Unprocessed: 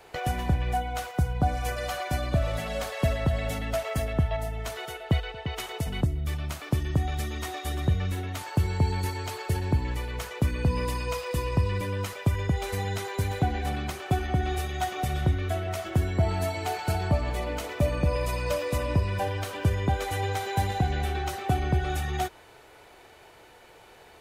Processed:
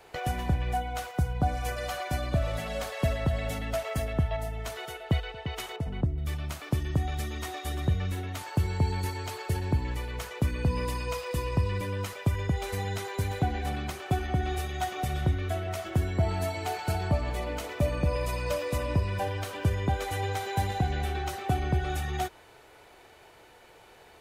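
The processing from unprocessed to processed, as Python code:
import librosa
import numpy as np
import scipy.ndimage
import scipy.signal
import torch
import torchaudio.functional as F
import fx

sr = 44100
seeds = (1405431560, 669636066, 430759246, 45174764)

y = fx.lowpass(x, sr, hz=1100.0, slope=6, at=(5.76, 6.18))
y = y * librosa.db_to_amplitude(-2.0)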